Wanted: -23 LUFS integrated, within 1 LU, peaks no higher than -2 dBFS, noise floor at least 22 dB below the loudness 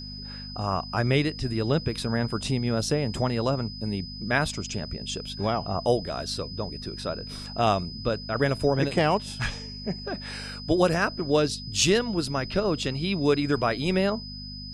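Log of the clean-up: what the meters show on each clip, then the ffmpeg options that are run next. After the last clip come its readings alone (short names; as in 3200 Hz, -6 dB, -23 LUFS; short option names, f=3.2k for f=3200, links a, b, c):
hum 50 Hz; harmonics up to 250 Hz; hum level -38 dBFS; steady tone 5000 Hz; tone level -39 dBFS; loudness -27.0 LUFS; peak -9.0 dBFS; loudness target -23.0 LUFS
-> -af "bandreject=f=50:t=h:w=4,bandreject=f=100:t=h:w=4,bandreject=f=150:t=h:w=4,bandreject=f=200:t=h:w=4,bandreject=f=250:t=h:w=4"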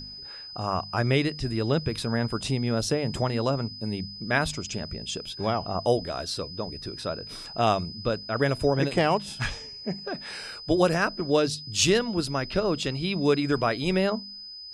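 hum none; steady tone 5000 Hz; tone level -39 dBFS
-> -af "bandreject=f=5k:w=30"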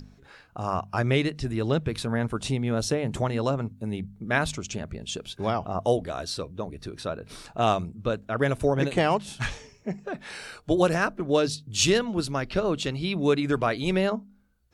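steady tone none; loudness -27.0 LUFS; peak -8.5 dBFS; loudness target -23.0 LUFS
-> -af "volume=4dB"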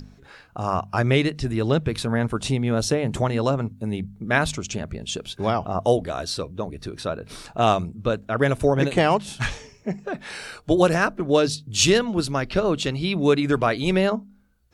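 loudness -23.0 LUFS; peak -4.5 dBFS; noise floor -52 dBFS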